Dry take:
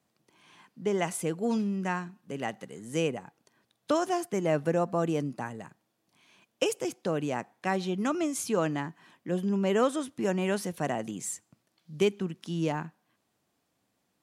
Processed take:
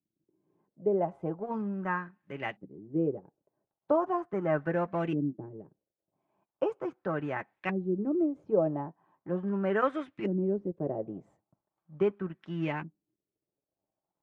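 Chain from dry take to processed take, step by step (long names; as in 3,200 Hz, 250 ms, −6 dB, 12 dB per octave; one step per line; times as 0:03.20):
mu-law and A-law mismatch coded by A
auto-filter low-pass saw up 0.39 Hz 270–2,500 Hz
notch comb filter 240 Hz
level −1.5 dB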